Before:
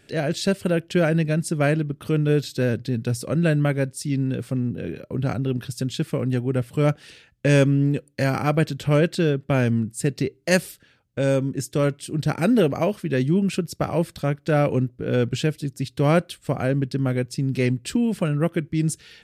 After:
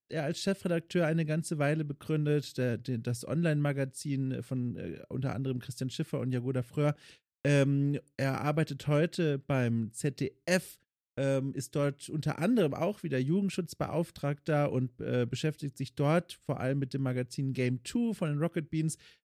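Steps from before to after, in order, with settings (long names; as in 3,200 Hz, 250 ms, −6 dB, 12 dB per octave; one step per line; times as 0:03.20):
noise gate −44 dBFS, range −37 dB
level −9 dB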